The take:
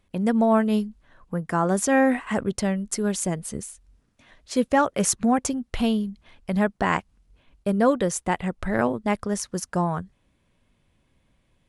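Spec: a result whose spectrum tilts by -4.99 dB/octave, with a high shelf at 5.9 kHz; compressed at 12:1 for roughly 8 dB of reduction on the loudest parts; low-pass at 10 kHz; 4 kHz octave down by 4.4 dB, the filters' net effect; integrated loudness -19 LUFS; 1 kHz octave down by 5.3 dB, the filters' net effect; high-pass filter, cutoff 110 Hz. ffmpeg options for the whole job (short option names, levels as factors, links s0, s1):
-af "highpass=110,lowpass=10000,equalizer=f=1000:t=o:g=-7,equalizer=f=4000:t=o:g=-9,highshelf=f=5900:g=6,acompressor=threshold=0.0631:ratio=12,volume=3.76"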